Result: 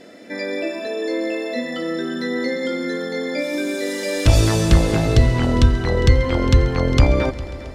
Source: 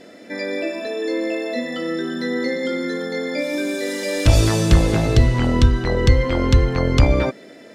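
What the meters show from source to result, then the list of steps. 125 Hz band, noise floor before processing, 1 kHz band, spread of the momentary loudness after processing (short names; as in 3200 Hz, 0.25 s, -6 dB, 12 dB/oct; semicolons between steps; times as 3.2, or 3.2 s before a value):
+0.5 dB, -43 dBFS, 0.0 dB, 9 LU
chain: multi-head echo 0.135 s, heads all three, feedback 57%, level -21 dB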